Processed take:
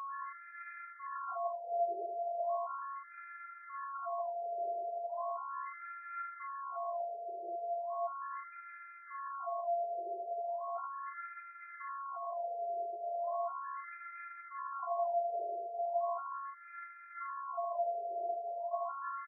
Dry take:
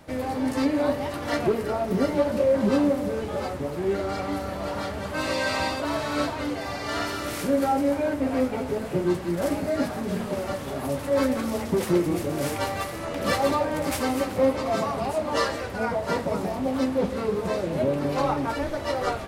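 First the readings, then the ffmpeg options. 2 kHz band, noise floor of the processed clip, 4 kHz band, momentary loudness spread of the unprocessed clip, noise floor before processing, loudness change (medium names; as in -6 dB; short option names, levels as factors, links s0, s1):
-17.5 dB, -53 dBFS, under -40 dB, 7 LU, -33 dBFS, -13.5 dB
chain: -filter_complex "[0:a]acrossover=split=350|4300[s0][s1][s2];[s0]aeval=exprs='sgn(val(0))*max(abs(val(0))-0.00631,0)':c=same[s3];[s3][s1][s2]amix=inputs=3:normalize=0,acrossover=split=660[s4][s5];[s4]aeval=exprs='val(0)*(1-0.5/2+0.5/2*cos(2*PI*2*n/s))':c=same[s6];[s5]aeval=exprs='val(0)*(1-0.5/2-0.5/2*cos(2*PI*2*n/s))':c=same[s7];[s6][s7]amix=inputs=2:normalize=0,afftfilt=real='hypot(re,im)*cos(PI*b)':imag='0':win_size=512:overlap=0.75,acrossover=split=110|700|3500[s8][s9][s10][s11];[s8]acompressor=threshold=0.00224:ratio=4[s12];[s9]acompressor=threshold=0.0141:ratio=4[s13];[s10]acompressor=threshold=0.00708:ratio=4[s14];[s11]acompressor=threshold=0.00355:ratio=4[s15];[s12][s13][s14][s15]amix=inputs=4:normalize=0,aeval=exprs='val(0)+0.00891*sin(2*PI*1100*n/s)':c=same,asuperstop=centerf=5500:order=12:qfactor=0.56,aecho=1:1:77|154|231:0.447|0.0938|0.0197,areverse,acompressor=mode=upward:threshold=0.00251:ratio=2.5,areverse,lowshelf=f=93:g=8.5,afftfilt=real='re*between(b*sr/1024,530*pow(1900/530,0.5+0.5*sin(2*PI*0.37*pts/sr))/1.41,530*pow(1900/530,0.5+0.5*sin(2*PI*0.37*pts/sr))*1.41)':imag='im*between(b*sr/1024,530*pow(1900/530,0.5+0.5*sin(2*PI*0.37*pts/sr))/1.41,530*pow(1900/530,0.5+0.5*sin(2*PI*0.37*pts/sr))*1.41)':win_size=1024:overlap=0.75,volume=1.26"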